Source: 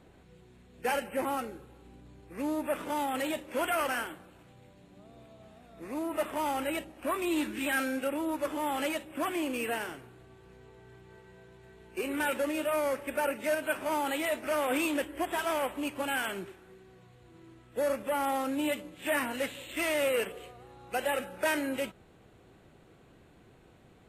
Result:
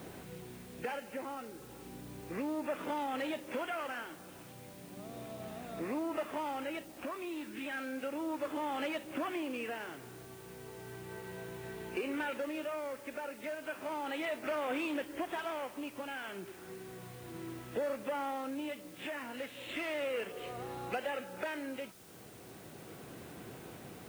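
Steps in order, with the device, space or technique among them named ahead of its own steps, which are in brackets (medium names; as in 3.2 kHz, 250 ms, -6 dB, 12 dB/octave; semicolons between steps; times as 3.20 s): medium wave at night (band-pass 110–4100 Hz; compression 4:1, threshold -47 dBFS, peak gain reduction 18 dB; tremolo 0.34 Hz, depth 49%; whistle 9 kHz -79 dBFS; white noise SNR 19 dB); trim +10.5 dB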